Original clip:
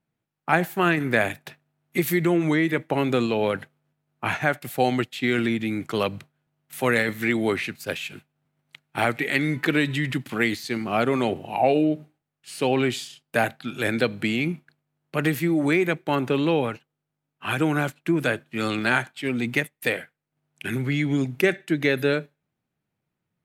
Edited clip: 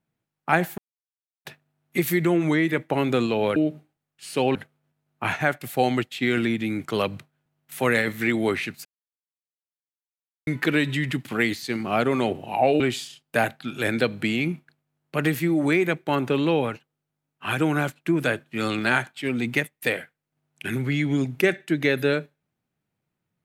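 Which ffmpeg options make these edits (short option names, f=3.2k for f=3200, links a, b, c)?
-filter_complex "[0:a]asplit=8[a][b][c][d][e][f][g][h];[a]atrim=end=0.78,asetpts=PTS-STARTPTS,afade=t=out:st=0.776:d=0.004:c=hsin[i];[b]atrim=start=0.78:end=1.45,asetpts=PTS-STARTPTS,volume=0[j];[c]atrim=start=1.45:end=3.562,asetpts=PTS-STARTPTS,afade=t=in:d=0.004:c=hsin[k];[d]atrim=start=11.808:end=12.802[l];[e]atrim=start=3.558:end=7.86,asetpts=PTS-STARTPTS,afade=t=out:st=4.298:d=0.004:c=hsin[m];[f]atrim=start=7.86:end=9.48,asetpts=PTS-STARTPTS,volume=0[n];[g]atrim=start=9.48:end=11.812,asetpts=PTS-STARTPTS,afade=t=in:d=0.004:c=hsin[o];[h]atrim=start=12.798[p];[i][j][k]concat=n=3:v=0:a=1[q];[q][l]acrossfade=d=0.004:c1=hsin:c2=hsin[r];[m][n][o]concat=n=3:v=0:a=1[s];[r][s]acrossfade=d=0.004:c1=hsin:c2=hsin[t];[t][p]acrossfade=d=0.004:c1=hsin:c2=hsin"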